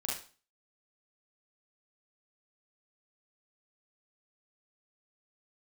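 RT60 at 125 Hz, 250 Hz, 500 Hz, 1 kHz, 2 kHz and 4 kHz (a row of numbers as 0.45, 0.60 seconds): 0.40, 0.40, 0.40, 0.40, 0.35, 0.35 seconds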